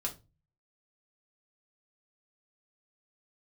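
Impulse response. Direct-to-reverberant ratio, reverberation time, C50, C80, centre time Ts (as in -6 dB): -1.0 dB, 0.25 s, 14.5 dB, 22.5 dB, 11 ms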